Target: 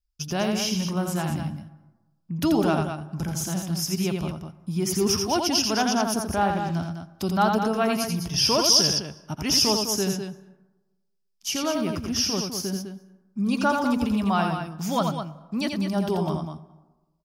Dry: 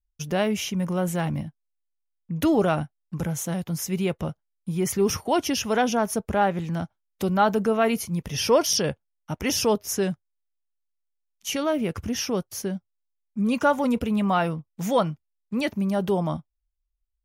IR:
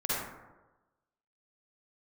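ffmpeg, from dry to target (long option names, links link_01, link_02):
-filter_complex "[0:a]equalizer=frequency=500:width_type=o:width=0.33:gain=-11,equalizer=frequency=2000:width_type=o:width=0.33:gain=-6,equalizer=frequency=5000:width_type=o:width=0.33:gain=12,aecho=1:1:84.55|204.1:0.562|0.398,asplit=2[link_01][link_02];[1:a]atrim=start_sample=2205,adelay=139[link_03];[link_02][link_03]afir=irnorm=-1:irlink=0,volume=-29dB[link_04];[link_01][link_04]amix=inputs=2:normalize=0,volume=-1dB"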